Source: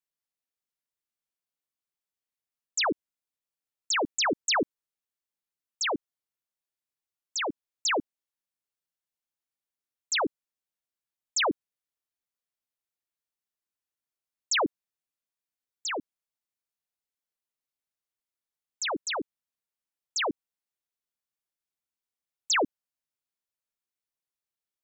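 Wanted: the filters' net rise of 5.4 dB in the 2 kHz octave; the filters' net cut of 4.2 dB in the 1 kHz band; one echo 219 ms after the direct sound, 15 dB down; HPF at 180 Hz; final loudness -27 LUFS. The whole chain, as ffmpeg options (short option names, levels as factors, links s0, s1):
-af "highpass=180,equalizer=f=1000:t=o:g=-8.5,equalizer=f=2000:t=o:g=9,aecho=1:1:219:0.178"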